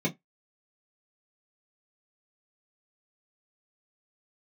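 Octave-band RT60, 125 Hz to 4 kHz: 0.15 s, 0.15 s, 0.15 s, 0.15 s, 0.15 s, 0.10 s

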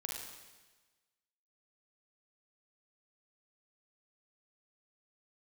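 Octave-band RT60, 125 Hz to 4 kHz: 1.3 s, 1.2 s, 1.3 s, 1.3 s, 1.3 s, 1.3 s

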